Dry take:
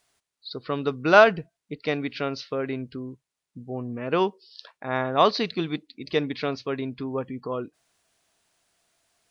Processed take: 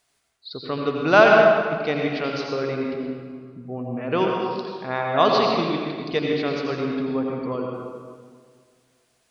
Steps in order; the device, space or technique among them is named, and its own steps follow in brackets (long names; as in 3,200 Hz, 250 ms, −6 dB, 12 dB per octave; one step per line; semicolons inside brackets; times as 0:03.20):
stairwell (convolution reverb RT60 1.8 s, pre-delay 77 ms, DRR −1 dB)